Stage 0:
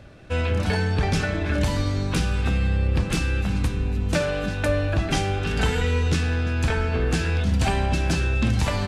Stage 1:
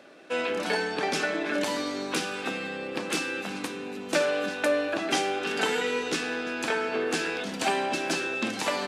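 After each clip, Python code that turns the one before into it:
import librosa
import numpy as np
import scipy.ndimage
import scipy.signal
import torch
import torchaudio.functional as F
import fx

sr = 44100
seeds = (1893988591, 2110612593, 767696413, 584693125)

y = scipy.signal.sosfilt(scipy.signal.butter(4, 270.0, 'highpass', fs=sr, output='sos'), x)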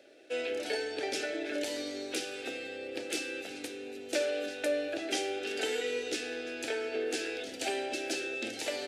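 y = fx.fixed_phaser(x, sr, hz=440.0, stages=4)
y = F.gain(torch.from_numpy(y), -4.0).numpy()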